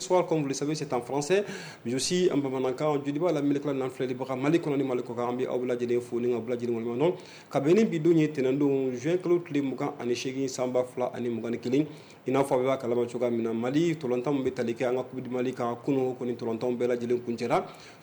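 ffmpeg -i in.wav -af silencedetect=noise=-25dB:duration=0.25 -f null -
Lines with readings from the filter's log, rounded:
silence_start: 1.49
silence_end: 1.87 | silence_duration: 0.37
silence_start: 7.11
silence_end: 7.53 | silence_duration: 0.42
silence_start: 11.83
silence_end: 12.28 | silence_duration: 0.45
silence_start: 17.60
silence_end: 18.03 | silence_duration: 0.43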